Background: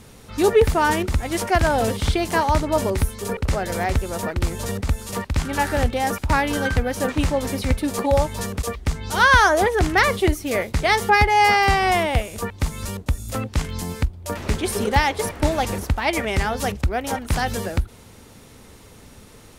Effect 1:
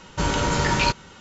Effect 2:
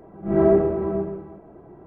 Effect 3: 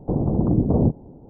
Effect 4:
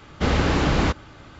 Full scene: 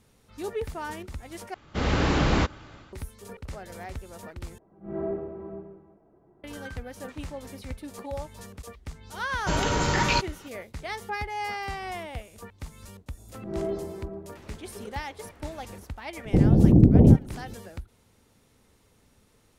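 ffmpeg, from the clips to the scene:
-filter_complex "[2:a]asplit=2[a][b];[0:a]volume=-16.5dB[c];[4:a]dynaudnorm=f=120:g=5:m=11.5dB[d];[3:a]tiltshelf=f=830:g=10[e];[c]asplit=3[f][g][h];[f]atrim=end=1.544[i];[d]atrim=end=1.39,asetpts=PTS-STARTPTS,volume=-9.5dB[j];[g]atrim=start=2.926:end=4.584[k];[a]atrim=end=1.86,asetpts=PTS-STARTPTS,volume=-14.5dB[l];[h]atrim=start=6.436[m];[1:a]atrim=end=1.2,asetpts=PTS-STARTPTS,volume=-3dB,afade=t=in:d=0.004:c=hsin,afade=t=out:st=1.196:d=0.004:c=hsin,adelay=9290[n];[b]atrim=end=1.86,asetpts=PTS-STARTPTS,volume=-14dB,afade=t=in:d=0.004:c=hsin,afade=t=out:st=1.856:d=0.004:c=hsin,adelay=13170[o];[e]atrim=end=1.29,asetpts=PTS-STARTPTS,volume=-5dB,afade=t=in:d=0.004:c=hsin,afade=t=out:st=1.286:d=0.004:c=hsin,adelay=16250[p];[i][j]acrossfade=d=0.004:c1=hsin:c2=hsin[q];[q][k]acrossfade=d=0.004:c1=hsin:c2=hsin[r];[r][l]acrossfade=d=0.004:c1=hsin:c2=hsin[s];[s][m]acrossfade=d=0.004:c1=hsin:c2=hsin[t];[t][n][o][p]amix=inputs=4:normalize=0"

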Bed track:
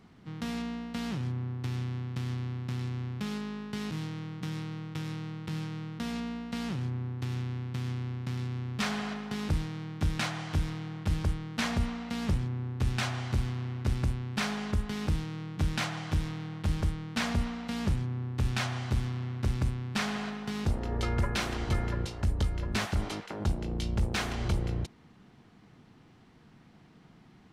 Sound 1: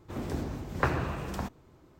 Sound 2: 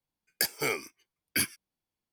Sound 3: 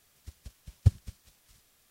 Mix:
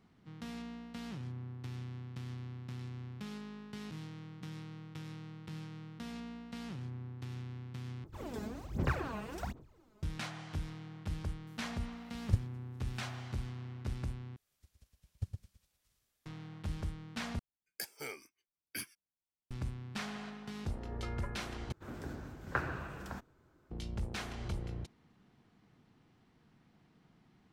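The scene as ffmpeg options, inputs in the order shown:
-filter_complex "[1:a]asplit=2[a][b];[3:a]asplit=2[c][d];[0:a]volume=-9.5dB[e];[a]aphaser=in_gain=1:out_gain=1:delay=4.8:decay=0.79:speed=1.3:type=sinusoidal[f];[c]aeval=exprs='val(0)*pow(10,-18*(0.5-0.5*cos(2*PI*1.3*n/s))/20)':c=same[g];[d]aecho=1:1:113:0.531[h];[b]equalizer=f=1.5k:w=3.8:g=9.5[i];[e]asplit=5[j][k][l][m][n];[j]atrim=end=8.044[o];[f]atrim=end=1.99,asetpts=PTS-STARTPTS,volume=-9.5dB[p];[k]atrim=start=10.026:end=14.364[q];[h]atrim=end=1.9,asetpts=PTS-STARTPTS,volume=-17dB[r];[l]atrim=start=16.256:end=17.394[s];[2:a]atrim=end=2.12,asetpts=PTS-STARTPTS,volume=-14dB[t];[m]atrim=start=19.506:end=21.724[u];[i]atrim=end=1.99,asetpts=PTS-STARTPTS,volume=-10dB[v];[n]atrim=start=23.706[w];[g]atrim=end=1.9,asetpts=PTS-STARTPTS,volume=-5dB,afade=t=in:d=0.004:c=hsin,afade=t=out:st=1.896:d=0.004:c=hsin,adelay=11470[x];[o][p]acrossfade=d=0.004:c1=hsin:c2=hsin[y];[y][q]acrossfade=d=0.004:c1=hsin:c2=hsin[z];[z][r]acrossfade=d=0.004:c1=hsin:c2=hsin[aa];[aa][s]acrossfade=d=0.004:c1=hsin:c2=hsin[ab];[ab][t]acrossfade=d=0.004:c1=hsin:c2=hsin[ac];[ac][u]acrossfade=d=0.004:c1=hsin:c2=hsin[ad];[ad][v]acrossfade=d=0.004:c1=hsin:c2=hsin[ae];[ae][w]acrossfade=d=0.004:c1=hsin:c2=hsin[af];[af][x]amix=inputs=2:normalize=0"

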